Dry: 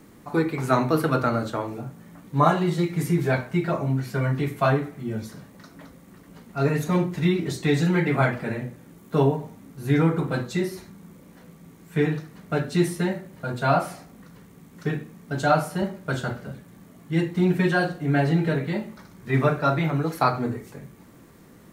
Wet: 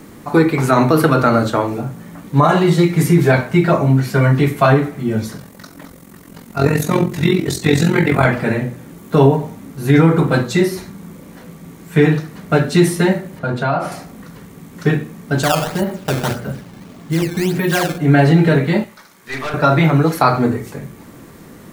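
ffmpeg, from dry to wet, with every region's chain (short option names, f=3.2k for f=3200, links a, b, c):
-filter_complex "[0:a]asettb=1/sr,asplit=3[a][b][c];[a]atrim=end=5.374[d];[b]atrim=start=5.37:end=8.25,asetpts=PTS-STARTPTS,afade=t=in:d=0.004:c=qsin,afade=t=out:st=2.876:d=0.004:c=qsin,highshelf=f=6.4k:g=7.5,tremolo=f=44:d=0.75[e];[c]atrim=start=8.246[f];[d][e]acrossfade=d=0.004:c1=hsin:c2=qsin[g];[g][f]acrossfade=d=0.004:c1=qsin:c2=hsin,asettb=1/sr,asplit=3[h][i][j];[h]atrim=end=13.394[k];[i]atrim=start=13.39:end=13.92,asetpts=PTS-STARTPTS,afade=t=in:d=0.004:c=qsin,afade=t=out:st=0.526:d=0.004:c=qsin,aemphasis=mode=reproduction:type=50kf,bandreject=f=7.8k:w=15,acompressor=threshold=-26dB:ratio=4:attack=3.2:release=140:knee=1:detection=peak[l];[j]atrim=start=13.916[m];[k][l]acrossfade=d=0.004:c1=hsin:c2=qsin[n];[n][m]acrossfade=d=0.004:c1=qsin:c2=hsin,asettb=1/sr,asplit=3[o][p][q];[o]atrim=end=15.434[r];[p]atrim=start=15.43:end=17.98,asetpts=PTS-STARTPTS,afade=t=in:d=0.004:c=qsin,afade=t=out:st=2.546:d=0.004:c=qsin,acompressor=threshold=-25dB:ratio=3:attack=3.2:release=140:knee=1:detection=peak,acrusher=samples=13:mix=1:aa=0.000001:lfo=1:lforange=20.8:lforate=1.7[s];[q]atrim=start=17.976[t];[r][s]acrossfade=d=0.004:c1=hsin:c2=qsin[u];[u][t]acrossfade=d=0.004:c1=qsin:c2=hsin,asettb=1/sr,asplit=3[v][w][x];[v]atrim=end=18.844[y];[w]atrim=start=18.84:end=19.54,asetpts=PTS-STARTPTS,afade=t=in:d=0.004:c=qsin,afade=t=out:st=0.696:d=0.004:c=qsin,highpass=f=1.2k:p=1,aeval=exprs='(tanh(39.8*val(0)+0.5)-tanh(0.5))/39.8':c=same[z];[x]atrim=start=19.536[aa];[y][z]acrossfade=d=0.004:c1=hsin:c2=qsin[ab];[ab][aa]acrossfade=d=0.004:c1=qsin:c2=hsin,bandreject=f=60:t=h:w=6,bandreject=f=120:t=h:w=6,bandreject=f=180:t=h:w=6,alimiter=level_in=12.5dB:limit=-1dB:release=50:level=0:latency=1,volume=-1dB"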